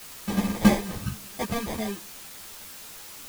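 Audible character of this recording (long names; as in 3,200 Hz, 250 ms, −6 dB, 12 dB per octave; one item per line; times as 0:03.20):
aliases and images of a low sample rate 1,400 Hz, jitter 0%
tremolo triangle 0.92 Hz, depth 50%
a quantiser's noise floor 8 bits, dither triangular
a shimmering, thickened sound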